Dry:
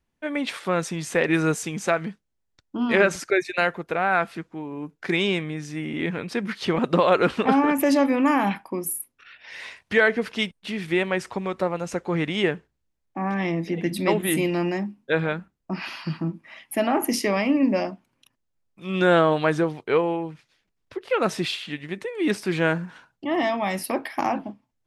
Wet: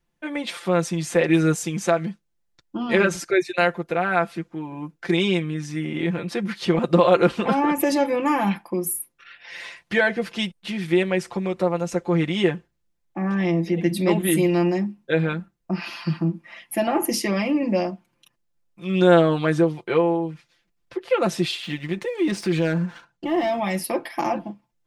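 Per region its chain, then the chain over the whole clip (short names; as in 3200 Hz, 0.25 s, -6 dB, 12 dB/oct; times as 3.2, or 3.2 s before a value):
21.63–23.6 LPF 9000 Hz + sample leveller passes 1 + compressor 2:1, threshold -24 dBFS
whole clip: comb 5.8 ms, depth 79%; dynamic EQ 1600 Hz, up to -4 dB, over -35 dBFS, Q 0.8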